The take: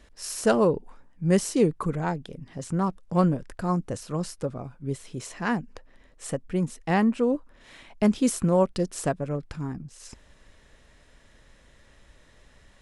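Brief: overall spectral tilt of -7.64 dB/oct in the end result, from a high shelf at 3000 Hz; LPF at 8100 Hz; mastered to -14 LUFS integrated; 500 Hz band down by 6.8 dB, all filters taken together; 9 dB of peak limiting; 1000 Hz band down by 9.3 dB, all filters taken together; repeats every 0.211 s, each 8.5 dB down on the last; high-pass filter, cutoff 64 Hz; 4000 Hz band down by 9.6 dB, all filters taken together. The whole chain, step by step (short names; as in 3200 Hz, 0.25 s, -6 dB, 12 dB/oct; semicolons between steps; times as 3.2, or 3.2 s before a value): HPF 64 Hz; LPF 8100 Hz; bell 500 Hz -6 dB; bell 1000 Hz -9 dB; high shelf 3000 Hz -7 dB; bell 4000 Hz -6.5 dB; limiter -21.5 dBFS; feedback echo 0.211 s, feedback 38%, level -8.5 dB; gain +18.5 dB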